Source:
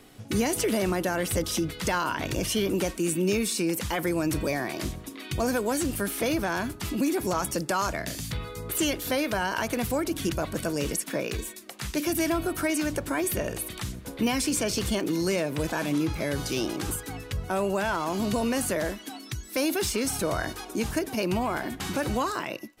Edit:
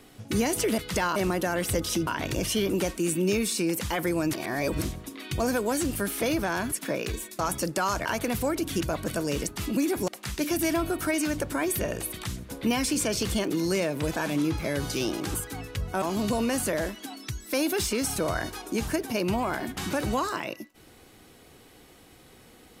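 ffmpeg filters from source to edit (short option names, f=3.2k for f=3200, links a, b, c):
-filter_complex "[0:a]asplit=12[a][b][c][d][e][f][g][h][i][j][k][l];[a]atrim=end=0.782[m];[b]atrim=start=1.688:end=2.072[n];[c]atrim=start=0.778:end=1.692[o];[d]atrim=start=2.068:end=4.332[p];[e]atrim=start=4.328:end=4.822,asetpts=PTS-STARTPTS,areverse[q];[f]atrim=start=4.818:end=6.722[r];[g]atrim=start=10.968:end=11.642[s];[h]atrim=start=7.318:end=7.982[t];[i]atrim=start=9.538:end=10.972[u];[j]atrim=start=6.718:end=7.322[v];[k]atrim=start=11.638:end=17.582[w];[l]atrim=start=18.048[x];[m][n]acrossfade=d=0.004:c1=hsin:c2=hsin[y];[y][o]acrossfade=d=0.004:c1=hsin:c2=hsin[z];[z][p]acrossfade=d=0.004:c1=hsin:c2=hsin[aa];[aa][q]acrossfade=d=0.004:c1=hsin:c2=hsin[ab];[ab][r]acrossfade=d=0.004:c1=hsin:c2=hsin[ac];[ac][s]acrossfade=d=0.004:c1=hsin:c2=hsin[ad];[ad][t]acrossfade=d=0.004:c1=hsin:c2=hsin[ae];[ae][u]acrossfade=d=0.004:c1=hsin:c2=hsin[af];[af][v]acrossfade=d=0.004:c1=hsin:c2=hsin[ag];[ag][w]acrossfade=d=0.004:c1=hsin:c2=hsin[ah];[ah][x]acrossfade=d=0.004:c1=hsin:c2=hsin"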